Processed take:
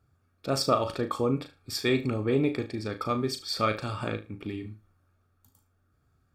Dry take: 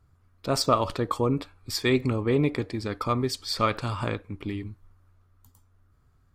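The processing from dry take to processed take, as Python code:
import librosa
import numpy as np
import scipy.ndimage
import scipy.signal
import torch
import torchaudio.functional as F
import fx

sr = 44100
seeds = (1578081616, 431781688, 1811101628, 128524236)

p1 = fx.notch_comb(x, sr, f0_hz=1000.0)
p2 = p1 + fx.room_flutter(p1, sr, wall_m=6.4, rt60_s=0.26, dry=0)
y = p2 * librosa.db_to_amplitude(-2.0)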